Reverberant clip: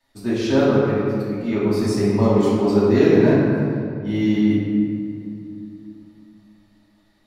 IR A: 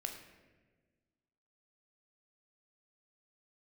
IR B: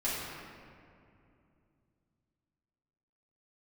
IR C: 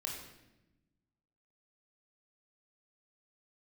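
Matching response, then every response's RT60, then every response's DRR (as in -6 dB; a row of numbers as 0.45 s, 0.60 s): B; 1.4 s, 2.6 s, 0.95 s; 3.5 dB, -10.5 dB, -1.5 dB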